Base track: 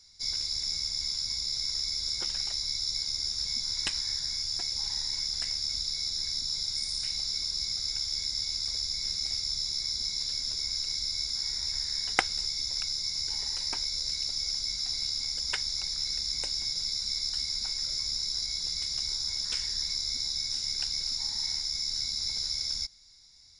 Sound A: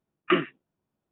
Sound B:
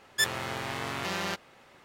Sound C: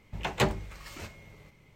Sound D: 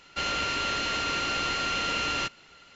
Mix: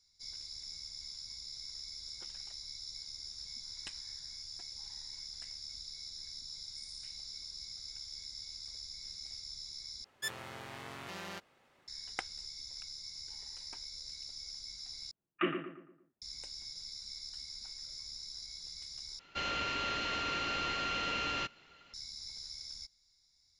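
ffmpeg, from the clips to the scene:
ffmpeg -i bed.wav -i cue0.wav -i cue1.wav -i cue2.wav -i cue3.wav -filter_complex "[0:a]volume=-14dB[link_01];[1:a]asplit=2[link_02][link_03];[link_03]adelay=114,lowpass=frequency=1900:poles=1,volume=-6.5dB,asplit=2[link_04][link_05];[link_05]adelay=114,lowpass=frequency=1900:poles=1,volume=0.44,asplit=2[link_06][link_07];[link_07]adelay=114,lowpass=frequency=1900:poles=1,volume=0.44,asplit=2[link_08][link_09];[link_09]adelay=114,lowpass=frequency=1900:poles=1,volume=0.44,asplit=2[link_10][link_11];[link_11]adelay=114,lowpass=frequency=1900:poles=1,volume=0.44[link_12];[link_02][link_04][link_06][link_08][link_10][link_12]amix=inputs=6:normalize=0[link_13];[4:a]lowpass=5300[link_14];[link_01]asplit=4[link_15][link_16][link_17][link_18];[link_15]atrim=end=10.044[link_19];[2:a]atrim=end=1.84,asetpts=PTS-STARTPTS,volume=-12dB[link_20];[link_16]atrim=start=11.876:end=15.114[link_21];[link_13]atrim=end=1.11,asetpts=PTS-STARTPTS,volume=-10dB[link_22];[link_17]atrim=start=16.216:end=19.194[link_23];[link_14]atrim=end=2.75,asetpts=PTS-STARTPTS,volume=-6.5dB[link_24];[link_18]atrim=start=21.936[link_25];[link_19][link_20]acrossfade=duration=0.004:curve1=hsin:curve2=hsin[link_26];[link_26][link_21]acrossfade=duration=0.004:curve1=hsin:curve2=hsin[link_27];[link_27][link_22]acrossfade=duration=0.004:curve1=hsin:curve2=hsin[link_28];[link_28][link_23]acrossfade=duration=0.004:curve1=hsin:curve2=hsin[link_29];[link_29][link_24]acrossfade=duration=0.004:curve1=hsin:curve2=hsin[link_30];[link_30][link_25]acrossfade=duration=0.004:curve1=hsin:curve2=hsin" out.wav

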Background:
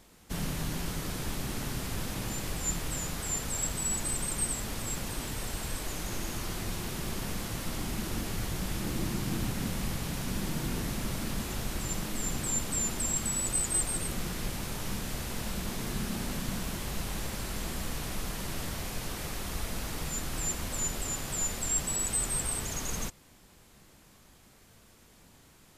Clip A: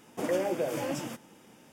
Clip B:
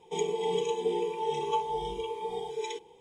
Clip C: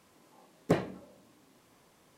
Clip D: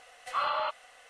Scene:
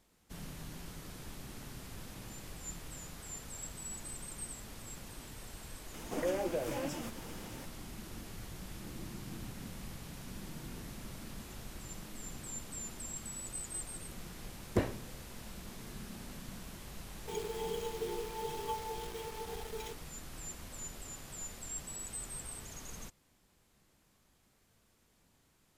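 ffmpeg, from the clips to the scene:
ffmpeg -i bed.wav -i cue0.wav -i cue1.wav -i cue2.wav -filter_complex "[0:a]volume=-12.5dB[link_01];[1:a]acompressor=mode=upward:threshold=-32dB:ratio=2.5:attack=3.2:release=140:knee=2.83:detection=peak[link_02];[3:a]afreqshift=-65[link_03];[2:a]acrusher=bits=7:dc=4:mix=0:aa=0.000001[link_04];[link_02]atrim=end=1.72,asetpts=PTS-STARTPTS,volume=-5dB,afade=type=in:duration=0.004:curve=hsin,afade=type=out:start_time=1.716:duration=0.004:curve=hsin,adelay=5940[link_05];[link_03]atrim=end=2.17,asetpts=PTS-STARTPTS,volume=-3.5dB,afade=type=in:duration=0.004:curve=hsin,afade=type=out:start_time=2.166:duration=0.004:curve=hsin,adelay=14060[link_06];[link_04]atrim=end=3,asetpts=PTS-STARTPTS,volume=-9.5dB,afade=type=in:duration=0.004:curve=hsin,afade=type=out:start_time=2.996:duration=0.004:curve=hsin,adelay=756756S[link_07];[link_01][link_05][link_06][link_07]amix=inputs=4:normalize=0" out.wav

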